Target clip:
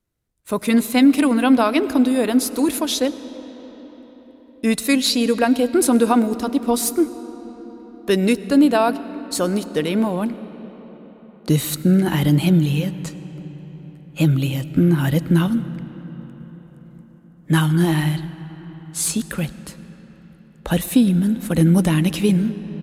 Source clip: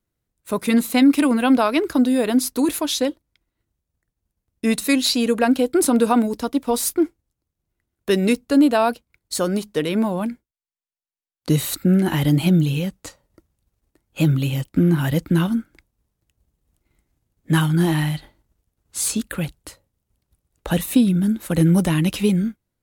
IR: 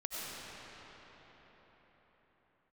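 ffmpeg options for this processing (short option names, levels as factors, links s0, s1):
-filter_complex "[0:a]asplit=2[s0][s1];[1:a]atrim=start_sample=2205,lowshelf=f=220:g=7[s2];[s1][s2]afir=irnorm=-1:irlink=0,volume=0.141[s3];[s0][s3]amix=inputs=2:normalize=0,aresample=32000,aresample=44100"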